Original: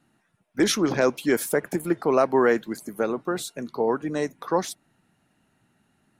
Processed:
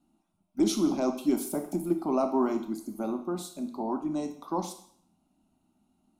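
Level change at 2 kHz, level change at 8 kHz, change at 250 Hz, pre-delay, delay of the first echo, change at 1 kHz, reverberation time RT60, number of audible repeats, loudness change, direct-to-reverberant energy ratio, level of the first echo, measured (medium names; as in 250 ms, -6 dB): -20.0 dB, -7.0 dB, -1.5 dB, 19 ms, no echo, -6.0 dB, 0.60 s, no echo, -5.5 dB, 6.0 dB, no echo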